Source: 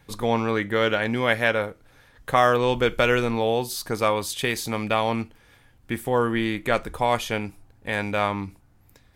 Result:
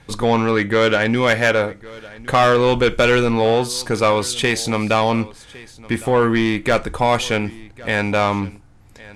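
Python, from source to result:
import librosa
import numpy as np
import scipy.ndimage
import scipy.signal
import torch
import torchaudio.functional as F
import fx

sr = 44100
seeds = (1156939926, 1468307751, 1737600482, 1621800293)

y = scipy.signal.sosfilt(scipy.signal.butter(4, 9800.0, 'lowpass', fs=sr, output='sos'), x)
y = 10.0 ** (-16.0 / 20.0) * np.tanh(y / 10.0 ** (-16.0 / 20.0))
y = y + 10.0 ** (-21.0 / 20.0) * np.pad(y, (int(1109 * sr / 1000.0), 0))[:len(y)]
y = y * 10.0 ** (8.5 / 20.0)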